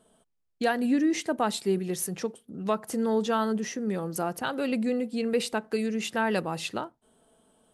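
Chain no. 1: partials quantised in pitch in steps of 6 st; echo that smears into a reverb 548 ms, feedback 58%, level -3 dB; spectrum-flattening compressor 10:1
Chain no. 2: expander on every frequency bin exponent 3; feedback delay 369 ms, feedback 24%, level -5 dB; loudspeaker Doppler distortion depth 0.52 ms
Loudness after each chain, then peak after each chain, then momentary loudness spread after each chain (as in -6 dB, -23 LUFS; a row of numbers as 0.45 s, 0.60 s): -27.5 LUFS, -34.0 LUFS; -7.0 dBFS, -16.0 dBFS; 1 LU, 11 LU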